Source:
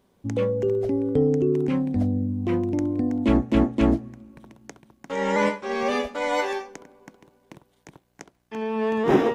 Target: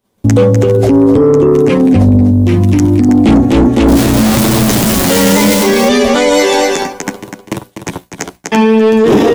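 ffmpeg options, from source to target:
-filter_complex "[0:a]asettb=1/sr,asplit=3[a][b][c];[a]atrim=end=3.874[d];[b]atrim=start=3.87:end=5.63,asetpts=PTS-STARTPTS,afade=t=in:d=0.004:c=qsin,afade=t=out:st=1.756:d=0.004:c=qsin,aeval=exprs='val(0)+0.5*0.0708*sgn(val(0))':c=same[e];[c]atrim=start=5.626[f];[d][e]acrossfade=d=0.004:c1=hsin:c2=qsin[g];[g][f]acrossfade=d=0.004:c1=qsin:c2=hsin,flanger=delay=9:depth=2.5:regen=-5:speed=0.67:shape=sinusoidal,agate=range=-33dB:threshold=-52dB:ratio=3:detection=peak,acrossover=split=580|2800[h][i][j];[i]acompressor=threshold=-41dB:ratio=6[k];[h][k][j]amix=inputs=3:normalize=0,highshelf=f=5k:g=7.5,asoftclip=type=tanh:threshold=-22dB,asettb=1/sr,asplit=3[l][m][n];[l]atrim=end=2.314[o];[m]atrim=start=2.31:end=3.09,asetpts=PTS-STARTPTS,afade=t=in:d=0.004:c=qsin,afade=t=out:st=0.776:d=0.004:c=qsin,equalizer=f=600:w=0.53:g=-11.5[p];[n]atrim=start=3.086[q];[o][p]acrossfade=d=0.004:c1=hsin:c2=qsin[r];[r][q]acrossfade=d=0.004:c1=qsin:c2=hsin,aecho=1:1:248:0.376,alimiter=level_in=31dB:limit=-1dB:release=50:level=0:latency=1,volume=-1dB"

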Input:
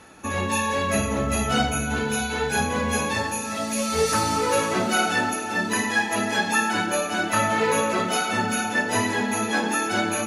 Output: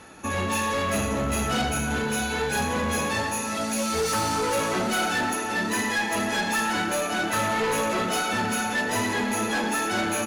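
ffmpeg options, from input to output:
-filter_complex "[0:a]asoftclip=type=tanh:threshold=-22.5dB,asplit=2[a][b];[b]asplit=6[c][d][e][f][g][h];[c]adelay=119,afreqshift=110,volume=-16dB[i];[d]adelay=238,afreqshift=220,volume=-20.7dB[j];[e]adelay=357,afreqshift=330,volume=-25.5dB[k];[f]adelay=476,afreqshift=440,volume=-30.2dB[l];[g]adelay=595,afreqshift=550,volume=-34.9dB[m];[h]adelay=714,afreqshift=660,volume=-39.7dB[n];[i][j][k][l][m][n]amix=inputs=6:normalize=0[o];[a][o]amix=inputs=2:normalize=0,volume=1.5dB"

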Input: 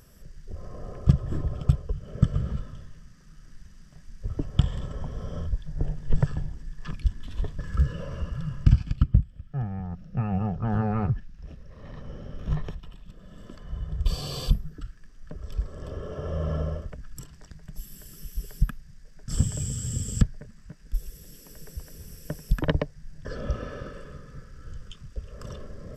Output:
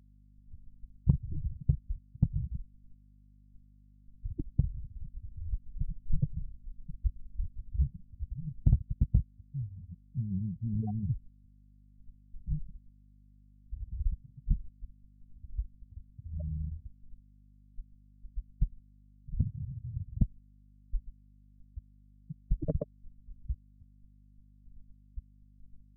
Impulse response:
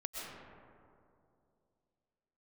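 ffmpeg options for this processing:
-af "afftfilt=real='re*gte(hypot(re,im),0.224)':imag='im*gte(hypot(re,im),0.224)':win_size=1024:overlap=0.75,aeval=exprs='0.668*(cos(1*acos(clip(val(0)/0.668,-1,1)))-cos(1*PI/2))+0.0133*(cos(2*acos(clip(val(0)/0.668,-1,1)))-cos(2*PI/2))+0.0335*(cos(3*acos(clip(val(0)/0.668,-1,1)))-cos(3*PI/2))+0.0168*(cos(5*acos(clip(val(0)/0.668,-1,1)))-cos(5*PI/2))+0.0133*(cos(8*acos(clip(val(0)/0.668,-1,1)))-cos(8*PI/2))':c=same,aeval=exprs='val(0)+0.00251*(sin(2*PI*50*n/s)+sin(2*PI*2*50*n/s)/2+sin(2*PI*3*50*n/s)/3+sin(2*PI*4*50*n/s)/4+sin(2*PI*5*50*n/s)/5)':c=same,volume=-6dB"

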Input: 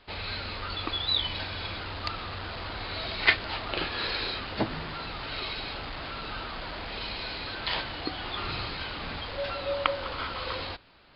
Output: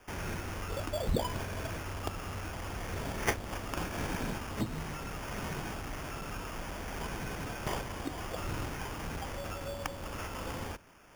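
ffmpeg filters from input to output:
-filter_complex "[0:a]acrossover=split=280|3000[a][b][c];[b]acompressor=threshold=-43dB:ratio=6[d];[a][d][c]amix=inputs=3:normalize=0,acrusher=samples=11:mix=1:aa=0.000001"

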